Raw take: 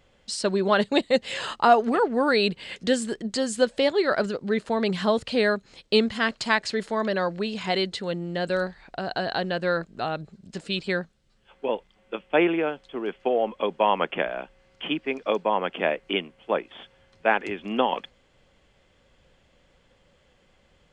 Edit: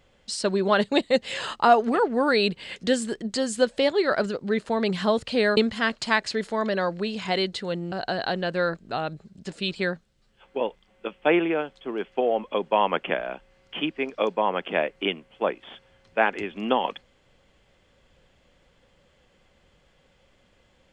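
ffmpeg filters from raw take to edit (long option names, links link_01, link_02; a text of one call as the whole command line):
ffmpeg -i in.wav -filter_complex "[0:a]asplit=3[link_01][link_02][link_03];[link_01]atrim=end=5.572[link_04];[link_02]atrim=start=5.958:end=8.312[link_05];[link_03]atrim=start=8.998[link_06];[link_04][link_05]acrossfade=duration=0.004:curve1=hsin:curve2=hsin[link_07];[link_07][link_06]acrossfade=duration=0.004:curve1=hsin:curve2=hsin" out.wav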